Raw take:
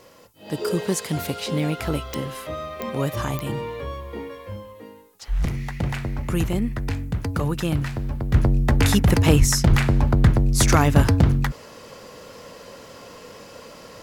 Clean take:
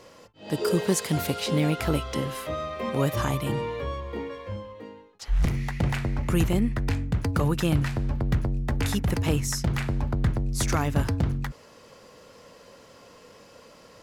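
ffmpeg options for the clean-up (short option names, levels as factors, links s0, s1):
-filter_complex "[0:a]adeclick=t=4,asplit=3[s0][s1][s2];[s0]afade=t=out:st=9.38:d=0.02[s3];[s1]highpass=f=140:w=0.5412,highpass=f=140:w=1.3066,afade=t=in:st=9.38:d=0.02,afade=t=out:st=9.5:d=0.02[s4];[s2]afade=t=in:st=9.5:d=0.02[s5];[s3][s4][s5]amix=inputs=3:normalize=0,asplit=3[s6][s7][s8];[s6]afade=t=out:st=9.69:d=0.02[s9];[s7]highpass=f=140:w=0.5412,highpass=f=140:w=1.3066,afade=t=in:st=9.69:d=0.02,afade=t=out:st=9.81:d=0.02[s10];[s8]afade=t=in:st=9.81:d=0.02[s11];[s9][s10][s11]amix=inputs=3:normalize=0,agate=range=0.0891:threshold=0.0178,asetnsamples=n=441:p=0,asendcmd='8.34 volume volume -8.5dB',volume=1"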